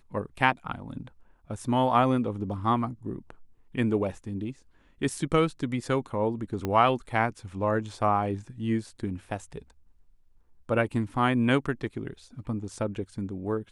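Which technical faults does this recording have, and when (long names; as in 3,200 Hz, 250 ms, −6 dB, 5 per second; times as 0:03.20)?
0:06.65: click −16 dBFS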